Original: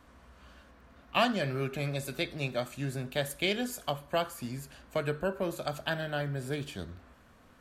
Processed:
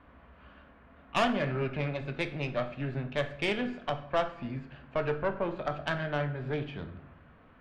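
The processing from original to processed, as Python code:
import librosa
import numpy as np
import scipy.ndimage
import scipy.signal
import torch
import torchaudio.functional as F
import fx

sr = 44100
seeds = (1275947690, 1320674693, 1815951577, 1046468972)

y = scipy.signal.sosfilt(scipy.signal.butter(4, 2900.0, 'lowpass', fs=sr, output='sos'), x)
y = fx.tube_stage(y, sr, drive_db=24.0, bias=0.65)
y = fx.room_shoebox(y, sr, seeds[0], volume_m3=190.0, walls='mixed', distance_m=0.31)
y = y * librosa.db_to_amplitude(4.5)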